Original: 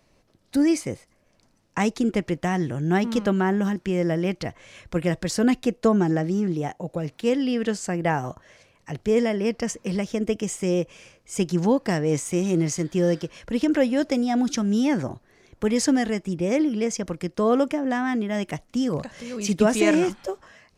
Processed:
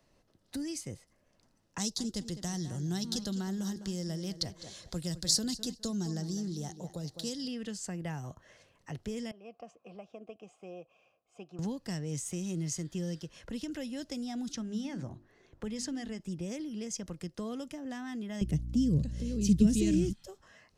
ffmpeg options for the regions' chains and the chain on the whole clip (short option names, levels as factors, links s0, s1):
-filter_complex "[0:a]asettb=1/sr,asplit=3[s0][s1][s2];[s0]atrim=end=1.784[s3];[s1]atrim=start=1.78:end=7.48,asetpts=PTS-STARTPTS,afade=t=in:d=0.004:c=qsin,afade=t=out:st=5.696:d=0.004:c=qsin,highshelf=f=3300:t=q:w=3:g=8,asplit=2[s4][s5];[s5]adelay=205,lowpass=f=4900:p=1,volume=0.211,asplit=2[s6][s7];[s7]adelay=205,lowpass=f=4900:p=1,volume=0.24,asplit=2[s8][s9];[s9]adelay=205,lowpass=f=4900:p=1,volume=0.24[s10];[s4][s6][s8][s10]amix=inputs=4:normalize=0,atrim=end_sample=251370[s11];[s2]atrim=start=7.476[s12];[s3][s11]acrossfade=d=0.004:c1=hsin:c2=qsin[s13];[s13][s12]acrossfade=d=0.004:c1=qsin:c2=hsin,asettb=1/sr,asplit=3[s14][s15][s16];[s14]atrim=end=9.314[s17];[s15]atrim=start=9.31:end=11.59,asetpts=PTS-STARTPTS,afade=t=in:d=0.004:c=qsin,afade=t=out:st=2.276:d=0.004:c=qsin,asplit=3[s18][s19][s20];[s18]bandpass=f=730:t=q:w=8,volume=1[s21];[s19]bandpass=f=1090:t=q:w=8,volume=0.501[s22];[s20]bandpass=f=2440:t=q:w=8,volume=0.355[s23];[s21][s22][s23]amix=inputs=3:normalize=0,lowshelf=f=250:g=10.5[s24];[s16]atrim=start=11.586[s25];[s17][s24]acrossfade=d=0.004:c1=hsin:c2=qsin[s26];[s26][s25]acrossfade=d=0.004:c1=qsin:c2=hsin,asettb=1/sr,asplit=3[s27][s28][s29];[s27]atrim=end=14.524[s30];[s28]atrim=start=14.52:end=16.2,asetpts=PTS-STARTPTS,afade=t=in:d=0.004:c=qsin,afade=t=out:st=1.676:d=0.004:c=qsin,lowpass=f=3900:p=1,bandreject=f=50:t=h:w=6,bandreject=f=100:t=h:w=6,bandreject=f=150:t=h:w=6,bandreject=f=200:t=h:w=6,bandreject=f=250:t=h:w=6,bandreject=f=300:t=h:w=6,bandreject=f=350:t=h:w=6[s31];[s29]atrim=start=16.196[s32];[s30][s31]acrossfade=d=0.004:c1=hsin:c2=qsin[s33];[s33][s32]acrossfade=d=0.004:c1=qsin:c2=hsin,asettb=1/sr,asplit=3[s34][s35][s36];[s34]atrim=end=18.414[s37];[s35]atrim=start=18.41:end=20.13,asetpts=PTS-STARTPTS,afade=t=in:d=0.004:c=qsin,afade=t=out:st=1.716:d=0.004:c=qsin,lowshelf=f=600:t=q:w=1.5:g=12.5,aeval=exprs='val(0)+0.0355*(sin(2*PI*60*n/s)+sin(2*PI*2*60*n/s)/2+sin(2*PI*3*60*n/s)/3+sin(2*PI*4*60*n/s)/4+sin(2*PI*5*60*n/s)/5)':c=same[s38];[s36]atrim=start=20.126[s39];[s37][s38]acrossfade=d=0.004:c1=hsin:c2=qsin[s40];[s40][s39]acrossfade=d=0.004:c1=qsin:c2=hsin,bandreject=f=2300:w=11,acrossover=split=180|3000[s41][s42][s43];[s42]acompressor=threshold=0.0158:ratio=5[s44];[s41][s44][s43]amix=inputs=3:normalize=0,volume=0.473"